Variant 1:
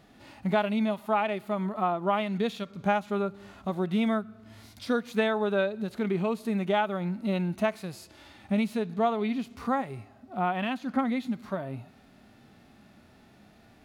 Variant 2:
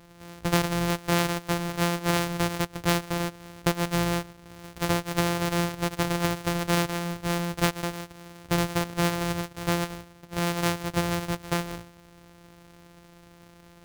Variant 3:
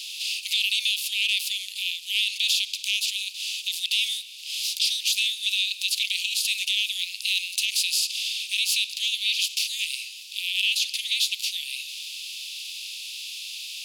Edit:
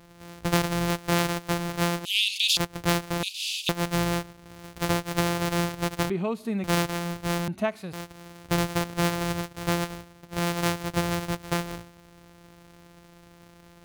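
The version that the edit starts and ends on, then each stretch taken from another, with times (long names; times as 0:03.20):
2
0:02.05–0:02.57: punch in from 3
0:03.23–0:03.69: punch in from 3
0:06.10–0:06.64: punch in from 1
0:07.48–0:07.93: punch in from 1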